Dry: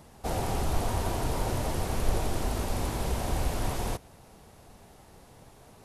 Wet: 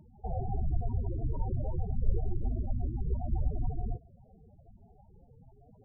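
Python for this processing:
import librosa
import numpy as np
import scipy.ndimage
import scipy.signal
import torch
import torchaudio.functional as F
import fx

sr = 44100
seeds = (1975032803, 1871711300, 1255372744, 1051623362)

y = fx.lower_of_two(x, sr, delay_ms=0.32, at=(0.68, 1.32))
y = fx.spec_topn(y, sr, count=8)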